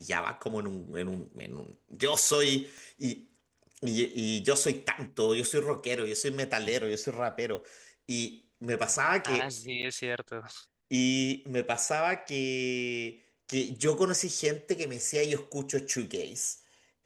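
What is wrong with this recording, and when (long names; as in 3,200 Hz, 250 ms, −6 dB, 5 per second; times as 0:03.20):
0:02.78: click
0:07.55: click −22 dBFS
0:09.82–0:09.83: drop-out 9.1 ms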